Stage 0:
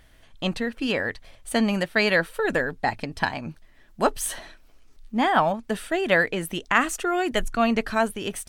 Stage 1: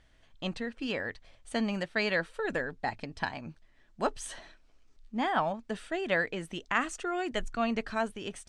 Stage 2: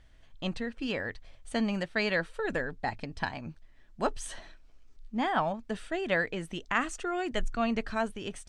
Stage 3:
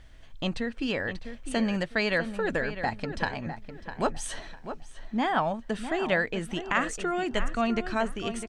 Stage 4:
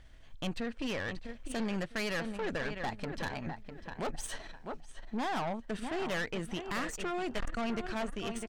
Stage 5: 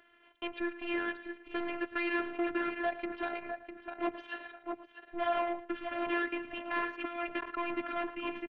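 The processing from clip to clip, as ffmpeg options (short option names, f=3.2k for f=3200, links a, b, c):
-af "lowpass=f=8.2k:w=0.5412,lowpass=f=8.2k:w=1.3066,volume=-8.5dB"
-af "lowshelf=f=110:g=7.5"
-filter_complex "[0:a]asplit=2[a][b];[b]acompressor=threshold=-38dB:ratio=6,volume=2dB[c];[a][c]amix=inputs=2:normalize=0,asplit=2[d][e];[e]adelay=653,lowpass=f=2.7k:p=1,volume=-10dB,asplit=2[f][g];[g]adelay=653,lowpass=f=2.7k:p=1,volume=0.29,asplit=2[h][i];[i]adelay=653,lowpass=f=2.7k:p=1,volume=0.29[j];[d][f][h][j]amix=inputs=4:normalize=0"
-af "aeval=exprs='(tanh(31.6*val(0)+0.65)-tanh(0.65))/31.6':c=same,volume=-1dB"
-af "aecho=1:1:111:0.178,highpass=f=330:t=q:w=0.5412,highpass=f=330:t=q:w=1.307,lowpass=f=3.1k:t=q:w=0.5176,lowpass=f=3.1k:t=q:w=0.7071,lowpass=f=3.1k:t=q:w=1.932,afreqshift=-140,afftfilt=real='hypot(re,im)*cos(PI*b)':imag='0':win_size=512:overlap=0.75,volume=7dB"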